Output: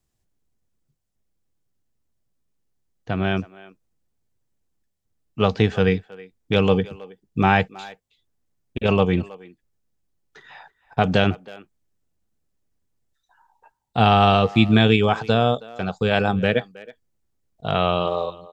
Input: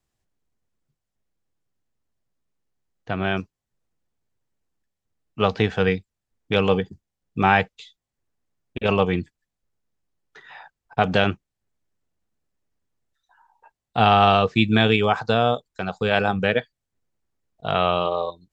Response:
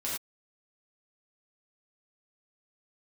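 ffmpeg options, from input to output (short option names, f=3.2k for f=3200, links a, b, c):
-filter_complex "[0:a]equalizer=f=1.4k:w=0.32:g=-6,asplit=2[a][b];[b]adelay=320,highpass=300,lowpass=3.4k,asoftclip=type=hard:threshold=-15dB,volume=-19dB[c];[a][c]amix=inputs=2:normalize=0,volume=4.5dB"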